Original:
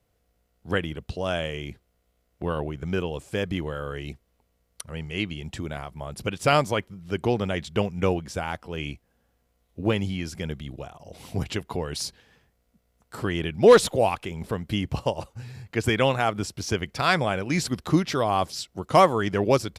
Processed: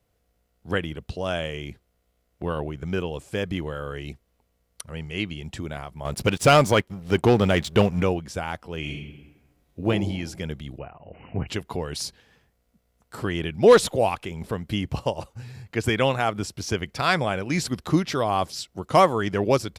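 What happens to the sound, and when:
6.05–8.03 sample leveller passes 2
8.79–9.88 reverb throw, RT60 1.1 s, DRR 0 dB
10.78–11.48 brick-wall FIR low-pass 3000 Hz

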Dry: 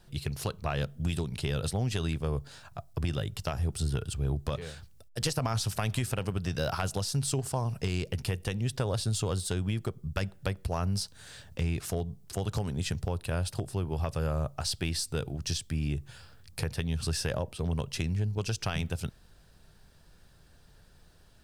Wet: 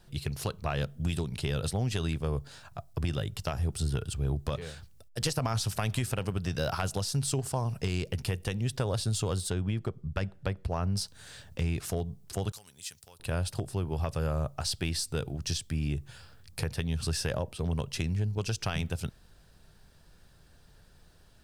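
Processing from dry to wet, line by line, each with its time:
9.5–10.97 LPF 2700 Hz 6 dB/oct
12.52–13.2 pre-emphasis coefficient 0.97

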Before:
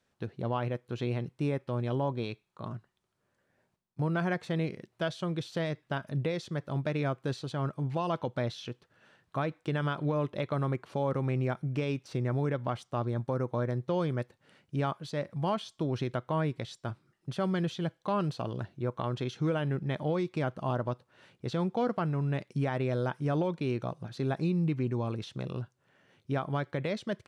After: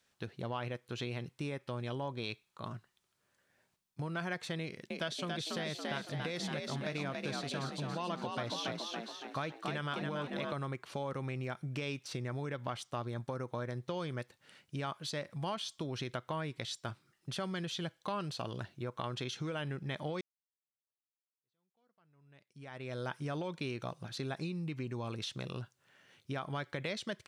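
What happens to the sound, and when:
4.62–10.53 frequency-shifting echo 0.281 s, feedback 50%, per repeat +52 Hz, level -4 dB
20.21–23.11 fade in exponential
whole clip: compressor, threshold -31 dBFS; tilt shelf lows -6 dB, about 1400 Hz; gain +1 dB

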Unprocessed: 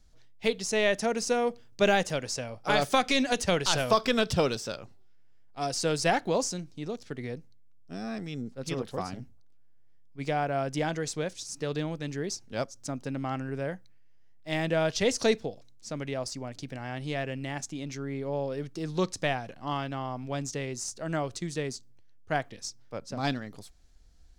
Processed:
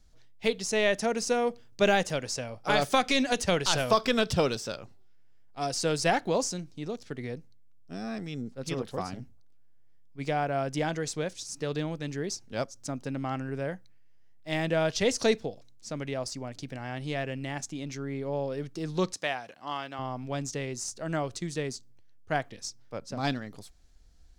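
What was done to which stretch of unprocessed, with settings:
19.14–19.99 HPF 650 Hz 6 dB/oct

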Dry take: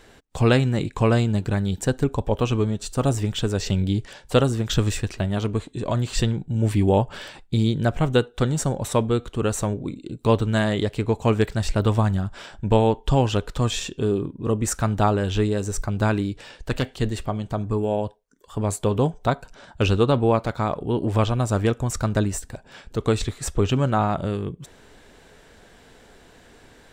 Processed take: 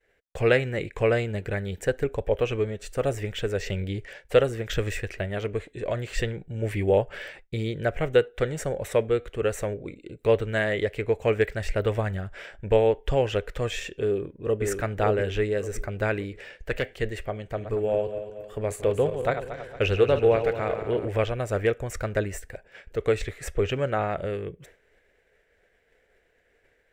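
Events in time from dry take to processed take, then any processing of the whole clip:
14.03–14.65 echo throw 0.57 s, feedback 35%, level -4 dB
17.38–21.08 regenerating reverse delay 0.115 s, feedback 68%, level -9 dB
whole clip: expander -40 dBFS; ten-band EQ 125 Hz -5 dB, 250 Hz -10 dB, 500 Hz +9 dB, 1000 Hz -11 dB, 2000 Hz +12 dB, 4000 Hz -8 dB, 8000 Hz -6 dB; gain -3 dB

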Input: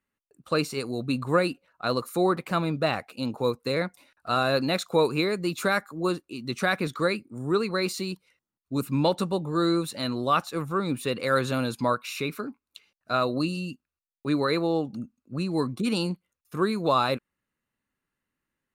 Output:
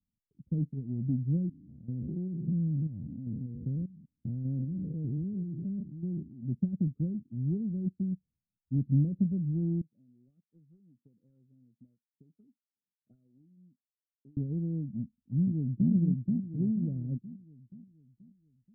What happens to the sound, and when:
1.49–6.43 stepped spectrum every 0.2 s
9.81–14.37 auto-wah 550–2800 Hz, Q 3.1, up, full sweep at -22 dBFS
14.98–15.91 echo throw 0.48 s, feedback 45%, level -2 dB
whole clip: inverse Chebyshev low-pass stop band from 930 Hz, stop band 70 dB; transient shaper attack +3 dB, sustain -2 dB; gain +3.5 dB

